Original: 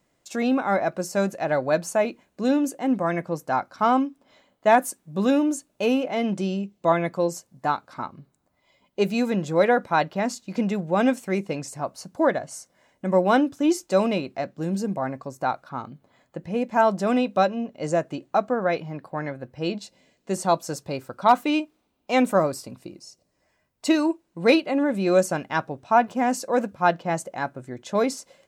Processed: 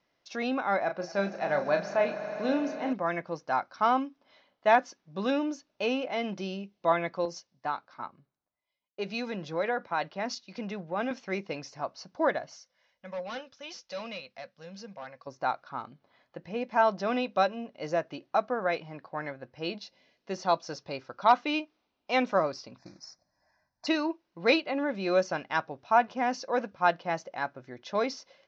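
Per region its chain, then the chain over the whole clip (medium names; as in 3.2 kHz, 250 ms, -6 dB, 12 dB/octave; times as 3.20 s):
0.83–2.93 s: treble shelf 6.2 kHz -10.5 dB + doubling 35 ms -7 dB + echo with a slow build-up 80 ms, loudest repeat 5, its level -18 dB
7.25–11.11 s: compression 3:1, threshold -22 dBFS + three bands expanded up and down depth 70%
12.56–15.27 s: amplifier tone stack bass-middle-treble 10-0-10 + hard clipper -34 dBFS + small resonant body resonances 230/500 Hz, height 15 dB
22.78–23.87 s: comb 1.2 ms, depth 95% + modulation noise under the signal 12 dB + Butterworth band-stop 3 kHz, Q 1.2
whole clip: steep low-pass 5.9 kHz 72 dB/octave; bass shelf 430 Hz -10.5 dB; trim -2 dB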